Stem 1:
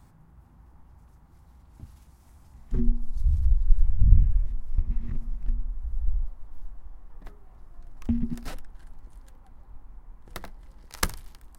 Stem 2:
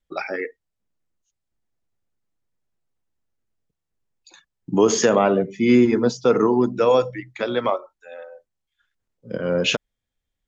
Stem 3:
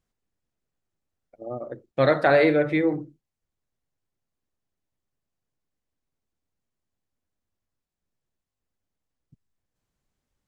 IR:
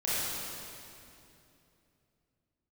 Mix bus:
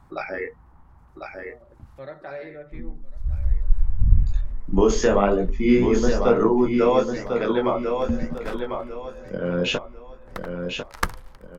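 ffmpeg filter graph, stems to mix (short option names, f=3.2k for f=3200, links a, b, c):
-filter_complex "[0:a]equalizer=f=1.2k:w=0.8:g=7,volume=0.5dB[a];[1:a]flanger=delay=17:depth=6.6:speed=1.1,volume=1.5dB,asplit=2[b][c];[c]volume=-6dB[d];[2:a]aecho=1:1:5.2:0.44,volume=-19.5dB,asplit=3[e][f][g];[f]volume=-21.5dB[h];[g]apad=whole_len=510855[i];[a][i]sidechaincompress=threshold=-50dB:ratio=10:attack=33:release=664[j];[d][h]amix=inputs=2:normalize=0,aecho=0:1:1048|2096|3144|4192:1|0.31|0.0961|0.0298[k];[j][b][e][k]amix=inputs=4:normalize=0,highshelf=f=4k:g=-8"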